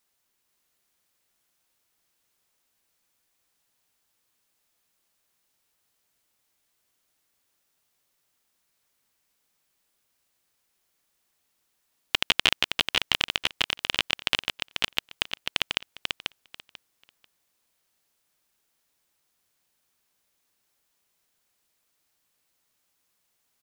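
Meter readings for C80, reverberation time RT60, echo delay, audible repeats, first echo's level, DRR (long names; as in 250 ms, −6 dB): no reverb audible, no reverb audible, 491 ms, 3, −5.0 dB, no reverb audible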